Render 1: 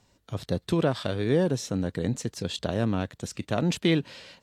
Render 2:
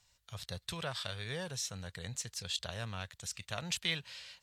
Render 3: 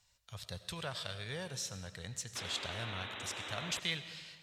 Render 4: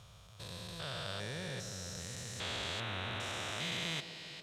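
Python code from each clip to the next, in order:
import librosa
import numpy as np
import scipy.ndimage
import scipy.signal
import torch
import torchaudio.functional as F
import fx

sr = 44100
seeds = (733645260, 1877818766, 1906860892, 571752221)

y1 = fx.tone_stack(x, sr, knobs='10-0-10')
y2 = fx.spec_paint(y1, sr, seeds[0], shape='noise', start_s=2.35, length_s=1.45, low_hz=220.0, high_hz=4000.0, level_db=-43.0)
y2 = fx.rev_freeverb(y2, sr, rt60_s=1.5, hf_ratio=0.85, predelay_ms=50, drr_db=11.5)
y2 = y2 * 10.0 ** (-2.0 / 20.0)
y3 = fx.spec_steps(y2, sr, hold_ms=400)
y3 = fx.echo_wet_bandpass(y3, sr, ms=140, feedback_pct=76, hz=430.0, wet_db=-11.5)
y3 = y3 * 10.0 ** (3.5 / 20.0)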